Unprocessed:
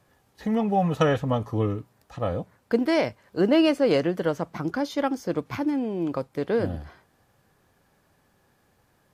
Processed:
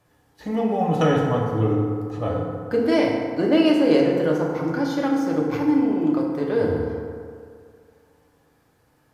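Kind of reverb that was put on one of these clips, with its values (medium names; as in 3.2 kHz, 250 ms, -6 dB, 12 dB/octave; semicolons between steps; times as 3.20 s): FDN reverb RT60 2.2 s, low-frequency decay 0.85×, high-frequency decay 0.45×, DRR -2.5 dB; trim -2 dB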